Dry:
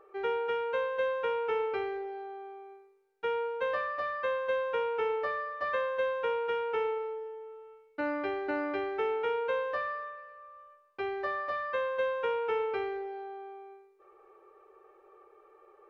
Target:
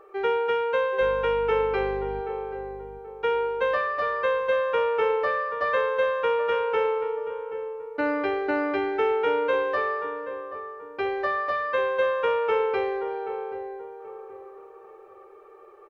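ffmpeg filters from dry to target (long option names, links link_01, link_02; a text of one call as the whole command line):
ffmpeg -i in.wav -filter_complex "[0:a]asettb=1/sr,asplit=3[link_01][link_02][link_03];[link_01]atrim=end=1.014[link_04];[link_02]atrim=start=1.01:end=2.21,asetpts=PTS-STARTPTS,afade=type=in:duration=0.004:curve=qsin,afade=type=out:start_time=1.196:duration=0.004:curve=qsin,aeval=exprs='val(0)+0.00501*(sin(2*PI*50*n/s)+sin(2*PI*2*50*n/s)/2+sin(2*PI*3*50*n/s)/3+sin(2*PI*4*50*n/s)/4+sin(2*PI*5*50*n/s)/5)':channel_layout=same[link_05];[link_03]atrim=start=2.206[link_06];[link_04][link_05]acrossfade=duration=0.004:curve1=hsin:curve2=qsin[link_07];[link_07][link_06]acrossfade=duration=0.004:curve1=qsin:curve2=hsin,asplit=2[link_08][link_09];[link_09]adelay=780,lowpass=frequency=1000:poles=1,volume=-9.5dB,asplit=2[link_10][link_11];[link_11]adelay=780,lowpass=frequency=1000:poles=1,volume=0.42,asplit=2[link_12][link_13];[link_13]adelay=780,lowpass=frequency=1000:poles=1,volume=0.42,asplit=2[link_14][link_15];[link_15]adelay=780,lowpass=frequency=1000:poles=1,volume=0.42,asplit=2[link_16][link_17];[link_17]adelay=780,lowpass=frequency=1000:poles=1,volume=0.42[link_18];[link_10][link_12][link_14][link_16][link_18]amix=inputs=5:normalize=0[link_19];[link_08][link_19]amix=inputs=2:normalize=0,volume=7dB" out.wav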